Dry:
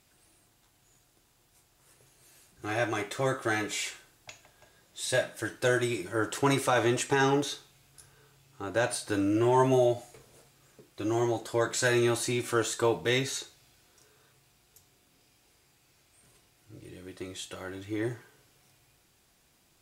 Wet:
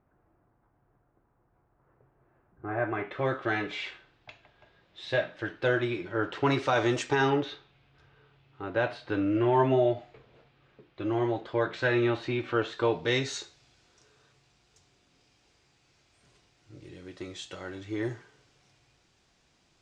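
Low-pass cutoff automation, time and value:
low-pass 24 dB/octave
2.65 s 1.4 kHz
3.33 s 3.7 kHz
6.37 s 3.7 kHz
6.96 s 6.6 kHz
7.47 s 3.4 kHz
12.65 s 3.4 kHz
13.32 s 6.6 kHz

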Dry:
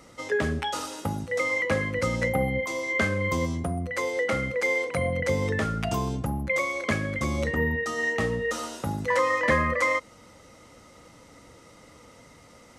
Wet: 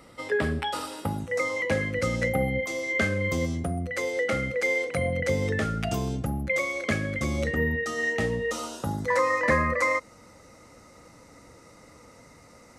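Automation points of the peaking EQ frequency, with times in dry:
peaking EQ -14 dB 0.23 oct
1.17 s 6.4 kHz
1.78 s 990 Hz
8.09 s 990 Hz
9.20 s 3.2 kHz

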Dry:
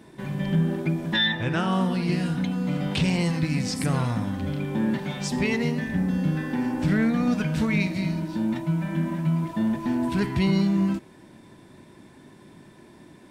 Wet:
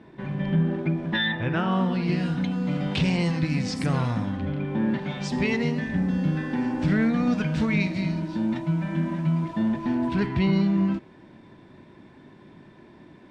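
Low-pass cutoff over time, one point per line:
1.63 s 2.9 kHz
2.41 s 5.6 kHz
4.20 s 5.6 kHz
4.54 s 2.4 kHz
5.43 s 5.7 kHz
9.41 s 5.7 kHz
10.39 s 3.5 kHz

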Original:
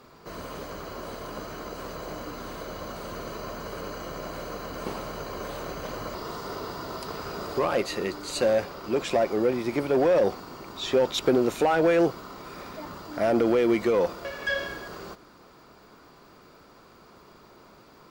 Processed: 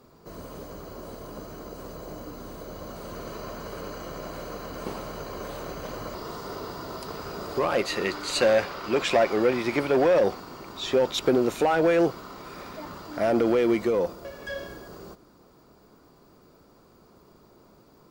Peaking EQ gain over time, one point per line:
peaking EQ 2.2 kHz 2.8 oct
2.60 s -9.5 dB
3.35 s -2.5 dB
7.45 s -2.5 dB
8.11 s +7.5 dB
9.68 s +7.5 dB
10.45 s 0 dB
13.67 s 0 dB
14.19 s -10.5 dB

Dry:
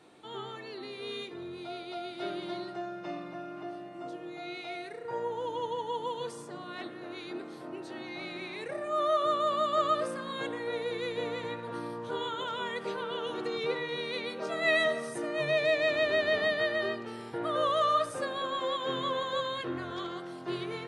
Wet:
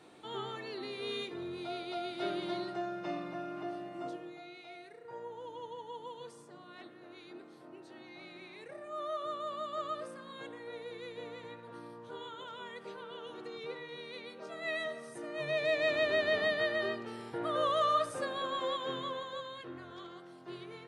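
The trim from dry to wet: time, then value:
4.07 s +0.5 dB
4.51 s -10.5 dB
14.98 s -10.5 dB
15.87 s -2.5 dB
18.69 s -2.5 dB
19.44 s -10.5 dB

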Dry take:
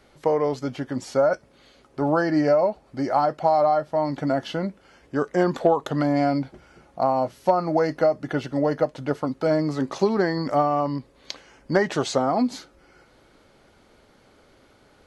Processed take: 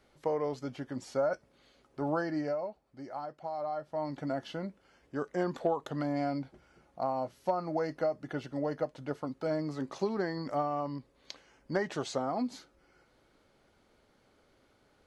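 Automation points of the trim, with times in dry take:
2.16 s -10 dB
2.85 s -19 dB
3.48 s -19 dB
4.03 s -11 dB

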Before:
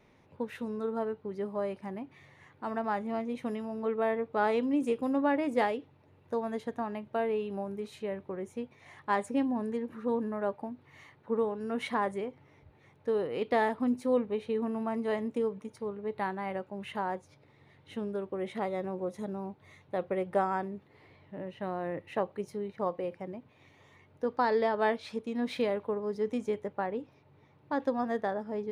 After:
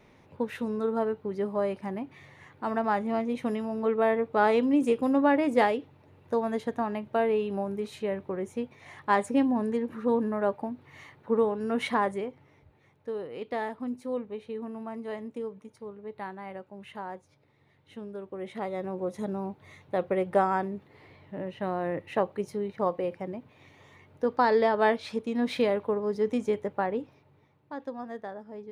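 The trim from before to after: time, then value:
11.87 s +5 dB
13.15 s -5 dB
18.08 s -5 dB
19.26 s +4.5 dB
27.01 s +4.5 dB
27.72 s -7 dB

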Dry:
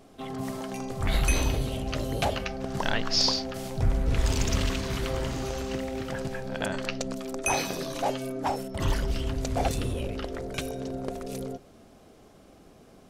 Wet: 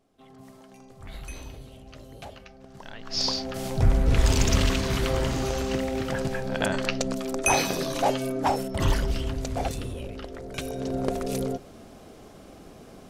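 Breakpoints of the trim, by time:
2.97 s -15 dB
3.18 s -3.5 dB
3.70 s +4.5 dB
8.74 s +4.5 dB
9.88 s -4 dB
10.41 s -4 dB
11.01 s +6.5 dB

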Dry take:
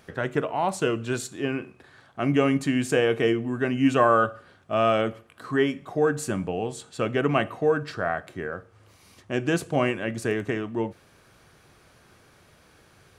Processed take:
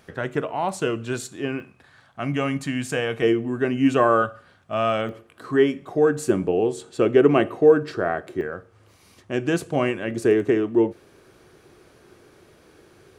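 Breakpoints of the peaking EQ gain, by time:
peaking EQ 370 Hz 0.85 oct
+0.5 dB
from 1.60 s -7.5 dB
from 3.22 s +4.5 dB
from 4.22 s -4.5 dB
from 5.09 s +6.5 dB
from 6.29 s +13 dB
from 8.41 s +3 dB
from 10.11 s +12 dB

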